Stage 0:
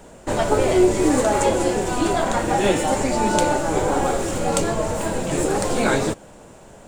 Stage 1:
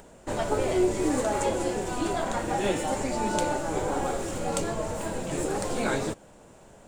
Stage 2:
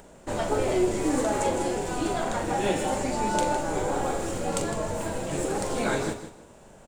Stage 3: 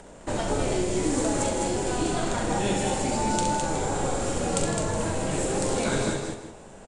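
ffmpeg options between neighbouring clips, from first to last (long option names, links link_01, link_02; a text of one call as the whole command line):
ffmpeg -i in.wav -af "acompressor=mode=upward:threshold=-40dB:ratio=2.5,volume=-8dB" out.wav
ffmpeg -i in.wav -filter_complex "[0:a]asplit=2[link_01][link_02];[link_02]adelay=42,volume=-9dB[link_03];[link_01][link_03]amix=inputs=2:normalize=0,aecho=1:1:158|316|474:0.282|0.0648|0.0149" out.wav
ffmpeg -i in.wav -filter_complex "[0:a]acrossover=split=230|3000[link_01][link_02][link_03];[link_02]acompressor=threshold=-31dB:ratio=6[link_04];[link_01][link_04][link_03]amix=inputs=3:normalize=0,aresample=22050,aresample=44100,aecho=1:1:67.06|209.9:0.501|0.562,volume=3dB" out.wav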